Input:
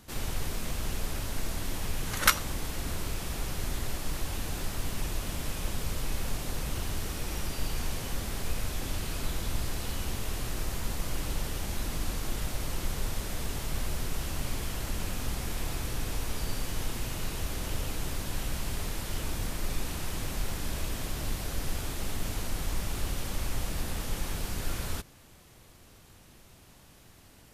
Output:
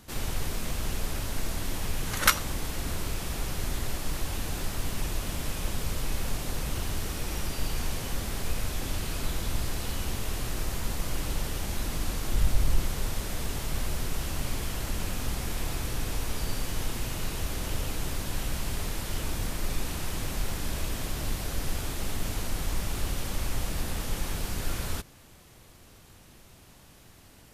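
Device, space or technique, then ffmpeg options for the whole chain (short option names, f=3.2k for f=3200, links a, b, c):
parallel distortion: -filter_complex "[0:a]asettb=1/sr,asplit=3[a][b][c];[a]atrim=end=12.334[d];[b]atrim=start=12.33:end=12.83,asetpts=PTS-STARTPTS,afade=t=in:d=0.004:c=qsin,afade=t=out:st=0.496:d=0.004:c=qsin,lowshelf=f=120:g=10.5[e];[c]atrim=start=12.826[f];[d][e]acrossfade=d=0.004:c1=hsin:c2=qsin[g];[g][f]acrossfade=d=0.004:c1=qsin:c2=hsin,asplit=2[h][i];[i]asoftclip=type=hard:threshold=-19.5dB,volume=-13dB[j];[h][j]amix=inputs=2:normalize=0"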